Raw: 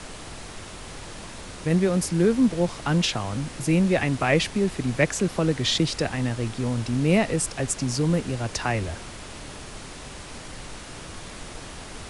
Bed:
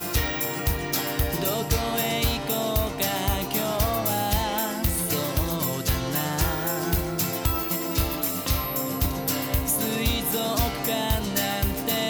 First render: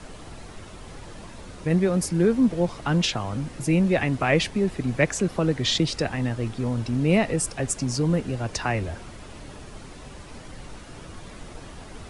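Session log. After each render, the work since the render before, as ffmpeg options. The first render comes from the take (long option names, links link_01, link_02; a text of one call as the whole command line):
ffmpeg -i in.wav -af "afftdn=noise_reduction=8:noise_floor=-40" out.wav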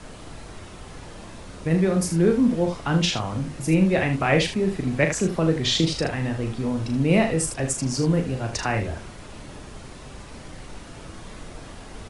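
ffmpeg -i in.wav -af "aecho=1:1:37|77:0.473|0.335" out.wav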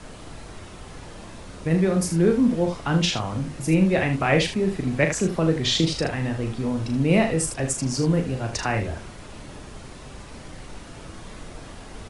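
ffmpeg -i in.wav -af anull out.wav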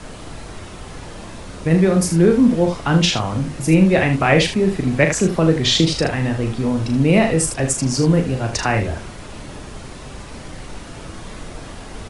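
ffmpeg -i in.wav -af "volume=6dB,alimiter=limit=-3dB:level=0:latency=1" out.wav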